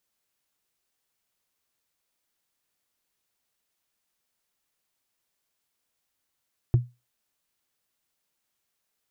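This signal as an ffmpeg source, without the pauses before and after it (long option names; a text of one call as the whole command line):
ffmpeg -f lavfi -i "aevalsrc='0.251*pow(10,-3*t/0.24)*sin(2*PI*122*t)+0.0631*pow(10,-3*t/0.071)*sin(2*PI*336.4*t)+0.0158*pow(10,-3*t/0.032)*sin(2*PI*659.3*t)+0.00398*pow(10,-3*t/0.017)*sin(2*PI*1089.8*t)+0.001*pow(10,-3*t/0.011)*sin(2*PI*1627.5*t)':duration=0.45:sample_rate=44100" out.wav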